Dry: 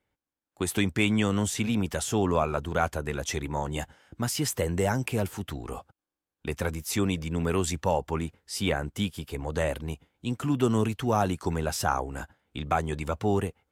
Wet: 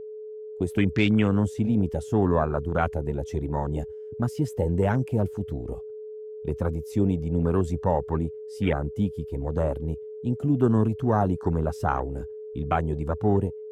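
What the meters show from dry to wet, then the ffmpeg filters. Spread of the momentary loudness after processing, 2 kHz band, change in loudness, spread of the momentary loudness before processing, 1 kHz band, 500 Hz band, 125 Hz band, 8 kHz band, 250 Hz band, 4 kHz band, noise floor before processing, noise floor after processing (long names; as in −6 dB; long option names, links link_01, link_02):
12 LU, −3.0 dB, +2.5 dB, 11 LU, +0.5 dB, +3.0 dB, +5.0 dB, below −15 dB, +4.0 dB, −8.0 dB, below −85 dBFS, −39 dBFS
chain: -af "afwtdn=0.0251,aeval=exprs='val(0)+0.0126*sin(2*PI*430*n/s)':channel_layout=same,lowshelf=frequency=360:gain=5.5"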